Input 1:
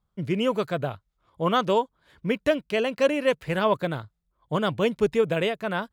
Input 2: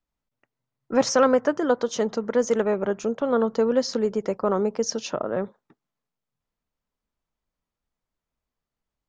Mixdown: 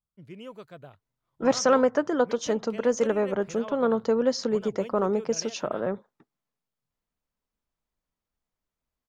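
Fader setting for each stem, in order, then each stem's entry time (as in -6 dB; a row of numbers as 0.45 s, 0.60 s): -18.0 dB, -2.0 dB; 0.00 s, 0.50 s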